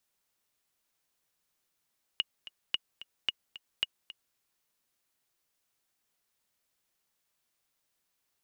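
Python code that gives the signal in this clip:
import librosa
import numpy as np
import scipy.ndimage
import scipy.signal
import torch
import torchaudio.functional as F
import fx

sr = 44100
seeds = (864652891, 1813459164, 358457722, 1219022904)

y = fx.click_track(sr, bpm=221, beats=2, bars=4, hz=2880.0, accent_db=16.5, level_db=-14.5)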